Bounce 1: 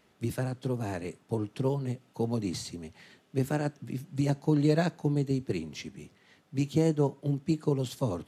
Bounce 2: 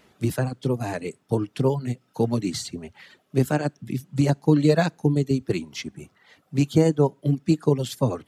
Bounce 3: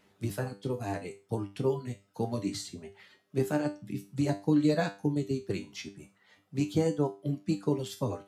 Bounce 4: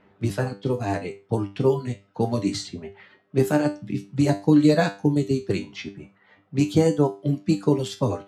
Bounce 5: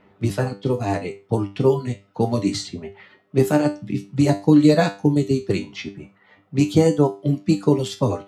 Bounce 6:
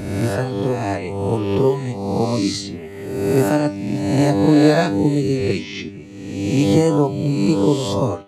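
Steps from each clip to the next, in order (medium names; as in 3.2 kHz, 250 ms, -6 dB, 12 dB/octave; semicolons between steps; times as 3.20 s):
reverb removal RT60 0.88 s; trim +8 dB
feedback comb 99 Hz, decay 0.31 s, harmonics all, mix 80%
level-controlled noise filter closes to 1.9 kHz, open at -26 dBFS; trim +8.5 dB
band-stop 1.6 kHz, Q 14; trim +3 dB
reverse spectral sustain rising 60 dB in 1.24 s; trim -1 dB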